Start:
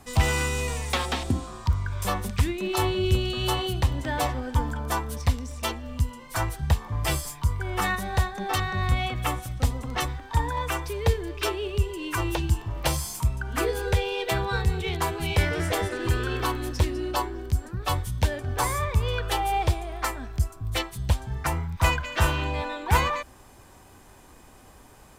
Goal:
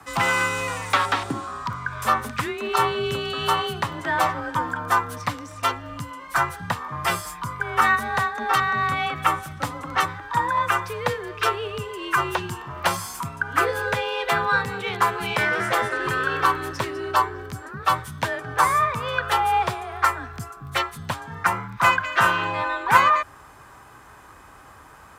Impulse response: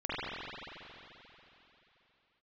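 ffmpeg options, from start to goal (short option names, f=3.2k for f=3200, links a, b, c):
-filter_complex "[0:a]equalizer=f=1.3k:t=o:w=1.4:g=14,acrossover=split=140|3400[a][b][c];[a]acompressor=threshold=-37dB:ratio=6[d];[d][b][c]amix=inputs=3:normalize=0,afreqshift=30,volume=-1.5dB"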